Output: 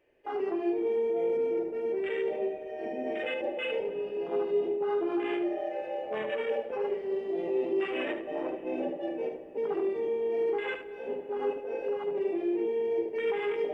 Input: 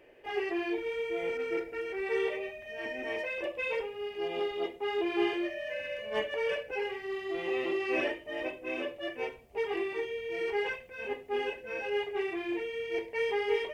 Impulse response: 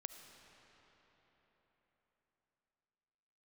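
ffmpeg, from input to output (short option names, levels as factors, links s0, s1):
-filter_complex "[0:a]afwtdn=0.02,alimiter=level_in=2:limit=0.0631:level=0:latency=1:release=12,volume=0.501,asplit=2[s0][s1];[1:a]atrim=start_sample=2205,lowshelf=f=380:g=12,adelay=74[s2];[s1][s2]afir=irnorm=-1:irlink=0,volume=0.596[s3];[s0][s3]amix=inputs=2:normalize=0,volume=1.68"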